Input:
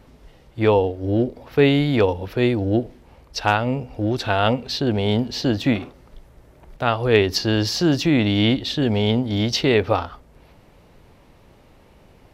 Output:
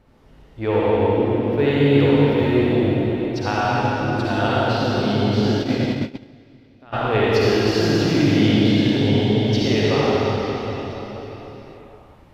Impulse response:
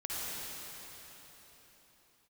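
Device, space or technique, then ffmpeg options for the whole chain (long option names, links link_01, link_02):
swimming-pool hall: -filter_complex "[1:a]atrim=start_sample=2205[link_01];[0:a][link_01]afir=irnorm=-1:irlink=0,highshelf=frequency=4000:gain=-6.5,asplit=3[link_02][link_03][link_04];[link_02]afade=type=out:start_time=5.5:duration=0.02[link_05];[link_03]agate=range=-20dB:threshold=-17dB:ratio=16:detection=peak,afade=type=in:start_time=5.5:duration=0.02,afade=type=out:start_time=6.92:duration=0.02[link_06];[link_04]afade=type=in:start_time=6.92:duration=0.02[link_07];[link_05][link_06][link_07]amix=inputs=3:normalize=0,volume=-2.5dB"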